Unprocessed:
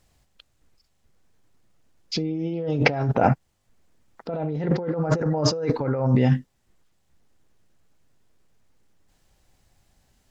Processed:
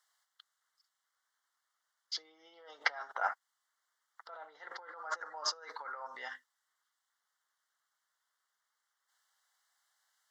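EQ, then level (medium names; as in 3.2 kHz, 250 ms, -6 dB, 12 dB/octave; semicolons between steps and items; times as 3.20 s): ladder high-pass 1 kHz, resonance 40%; Butterworth band-stop 2.5 kHz, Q 2.9; 0.0 dB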